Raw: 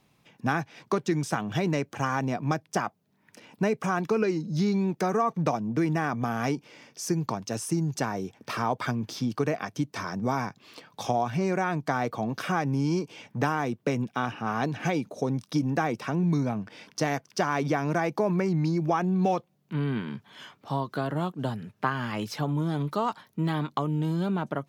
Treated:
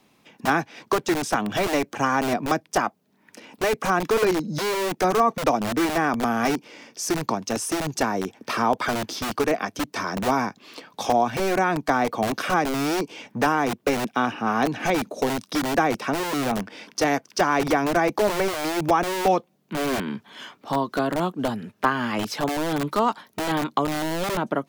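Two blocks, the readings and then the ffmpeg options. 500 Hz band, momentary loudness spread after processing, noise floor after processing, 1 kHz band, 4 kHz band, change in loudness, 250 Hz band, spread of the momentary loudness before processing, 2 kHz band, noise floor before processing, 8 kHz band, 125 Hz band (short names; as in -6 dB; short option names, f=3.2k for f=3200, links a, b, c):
+6.0 dB, 7 LU, -62 dBFS, +7.0 dB, +9.0 dB, +4.5 dB, +2.5 dB, 6 LU, +7.0 dB, -67 dBFS, +8.0 dB, -5.0 dB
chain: -filter_complex "[0:a]lowshelf=f=180:t=q:w=1.5:g=-7,acrossover=split=300|1400[a][b][c];[a]aeval=exprs='(mod(29.9*val(0)+1,2)-1)/29.9':c=same[d];[d][b][c]amix=inputs=3:normalize=0,volume=6dB"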